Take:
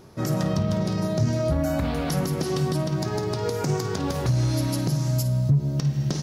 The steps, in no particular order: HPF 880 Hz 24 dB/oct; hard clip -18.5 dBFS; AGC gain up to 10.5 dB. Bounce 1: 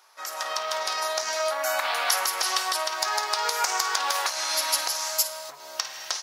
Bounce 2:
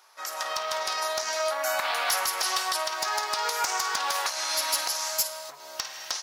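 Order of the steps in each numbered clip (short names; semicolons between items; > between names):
HPF > hard clip > AGC; AGC > HPF > hard clip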